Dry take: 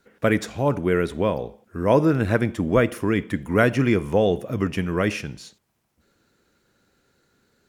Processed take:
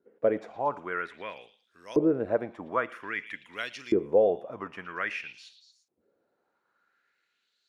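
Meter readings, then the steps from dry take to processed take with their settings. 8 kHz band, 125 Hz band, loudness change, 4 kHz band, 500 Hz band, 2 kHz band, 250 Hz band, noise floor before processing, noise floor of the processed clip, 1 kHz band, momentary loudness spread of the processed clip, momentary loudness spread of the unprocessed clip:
below −15 dB, −21.5 dB, −7.5 dB, −8.5 dB, −6.0 dB, −7.5 dB, −10.5 dB, −71 dBFS, −77 dBFS, −6.0 dB, 15 LU, 8 LU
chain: echo through a band-pass that steps 115 ms, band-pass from 3,300 Hz, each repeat 0.7 octaves, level −10 dB
auto-filter band-pass saw up 0.51 Hz 360–5,300 Hz

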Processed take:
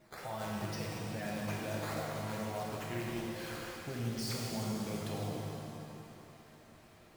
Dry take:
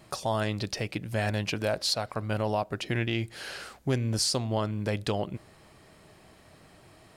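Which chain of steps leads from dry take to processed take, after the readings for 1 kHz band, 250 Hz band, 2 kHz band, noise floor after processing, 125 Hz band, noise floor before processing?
−7.5 dB, −6.0 dB, −8.5 dB, −59 dBFS, −9.0 dB, −56 dBFS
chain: spectral magnitudes quantised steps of 15 dB
brickwall limiter −25.5 dBFS, peak gain reduction 9.5 dB
flanger 0.88 Hz, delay 3.1 ms, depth 6.3 ms, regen +70%
sample-and-hold swept by an LFO 9×, swing 160% 2.3 Hz
reverb with rising layers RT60 2.8 s, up +7 semitones, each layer −8 dB, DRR −4 dB
level −5 dB

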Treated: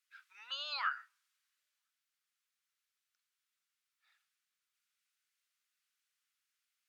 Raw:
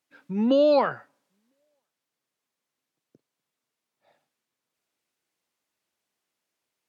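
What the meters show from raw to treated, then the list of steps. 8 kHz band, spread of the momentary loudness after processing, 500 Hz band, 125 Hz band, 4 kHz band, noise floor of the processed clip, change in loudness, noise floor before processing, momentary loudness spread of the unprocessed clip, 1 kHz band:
can't be measured, 13 LU, below −40 dB, below −40 dB, −2.0 dB, below −85 dBFS, −16.5 dB, below −85 dBFS, 11 LU, −12.5 dB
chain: Chebyshev high-pass filter 1,300 Hz, order 4
level −2 dB

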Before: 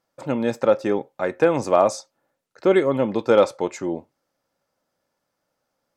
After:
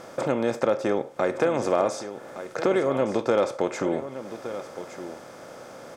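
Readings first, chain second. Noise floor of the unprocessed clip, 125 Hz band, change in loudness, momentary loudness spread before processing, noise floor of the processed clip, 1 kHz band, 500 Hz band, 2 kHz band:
−78 dBFS, −3.5 dB, −5.0 dB, 11 LU, −44 dBFS, −3.5 dB, −4.0 dB, −2.5 dB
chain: compressor on every frequency bin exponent 0.6
downward compressor 2 to 1, threshold −38 dBFS, peak gain reduction 15.5 dB
single-tap delay 1,166 ms −12 dB
level +6.5 dB

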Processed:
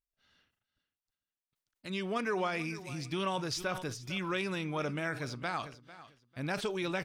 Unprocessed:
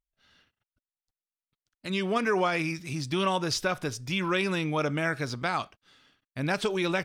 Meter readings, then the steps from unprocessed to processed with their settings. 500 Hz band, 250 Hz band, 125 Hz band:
−6.5 dB, −6.5 dB, −6.5 dB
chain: on a send: repeating echo 448 ms, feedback 24%, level −17 dB
on the sum: level that may fall only so fast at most 110 dB per second
level −7 dB

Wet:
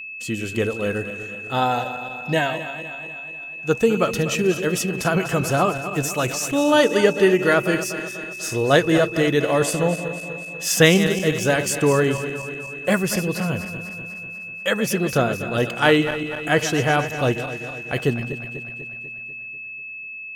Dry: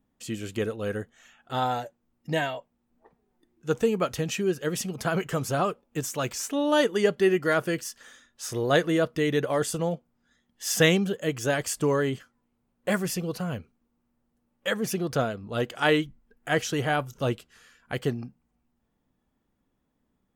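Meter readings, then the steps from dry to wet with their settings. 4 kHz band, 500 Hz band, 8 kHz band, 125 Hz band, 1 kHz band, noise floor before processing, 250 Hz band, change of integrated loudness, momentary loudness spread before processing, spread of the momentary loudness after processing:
+6.5 dB, +6.5 dB, +6.5 dB, +7.0 dB, +6.5 dB, −76 dBFS, +6.5 dB, +6.0 dB, 14 LU, 15 LU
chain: feedback delay that plays each chunk backwards 123 ms, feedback 74%, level −11 dB
steady tone 2,600 Hz −38 dBFS
level +6 dB

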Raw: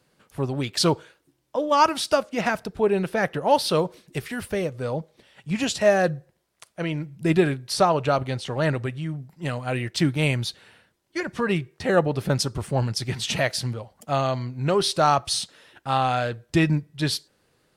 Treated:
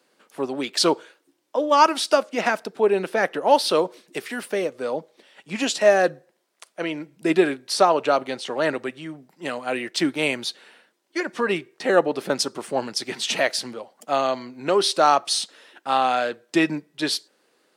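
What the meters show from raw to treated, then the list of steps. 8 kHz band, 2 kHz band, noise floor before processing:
+2.0 dB, +2.5 dB, −69 dBFS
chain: high-pass filter 250 Hz 24 dB per octave
parametric band 12,000 Hz −4.5 dB 0.36 octaves
level +2.5 dB

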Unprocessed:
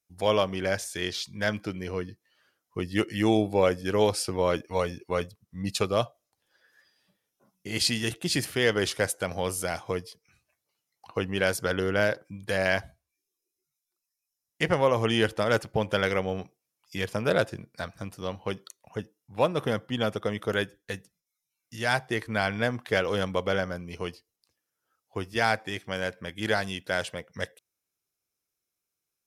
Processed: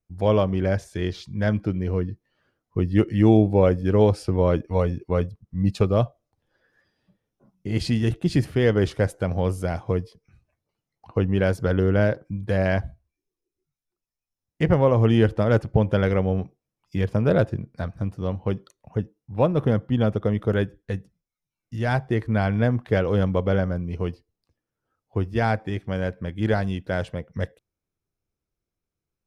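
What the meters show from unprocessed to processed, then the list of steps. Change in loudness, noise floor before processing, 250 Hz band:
+5.0 dB, −85 dBFS, +8.0 dB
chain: spectral tilt −4 dB per octave

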